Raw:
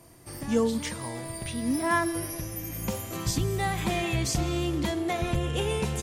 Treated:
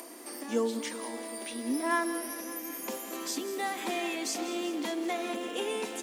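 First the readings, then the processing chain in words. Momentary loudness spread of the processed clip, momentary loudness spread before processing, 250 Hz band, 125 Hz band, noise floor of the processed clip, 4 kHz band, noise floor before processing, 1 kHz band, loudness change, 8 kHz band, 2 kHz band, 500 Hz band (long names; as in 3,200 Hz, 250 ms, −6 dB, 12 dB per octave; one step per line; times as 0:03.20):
8 LU, 9 LU, −4.5 dB, below −25 dB, −43 dBFS, −3.0 dB, −41 dBFS, −3.0 dB, −4.5 dB, −3.0 dB, −3.0 dB, −3.0 dB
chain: sub-octave generator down 1 octave, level −3 dB
Butterworth high-pass 230 Hz 72 dB per octave
upward compression, threshold −32 dBFS
feedback echo at a low word length 190 ms, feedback 80%, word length 8 bits, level −14.5 dB
level −3.5 dB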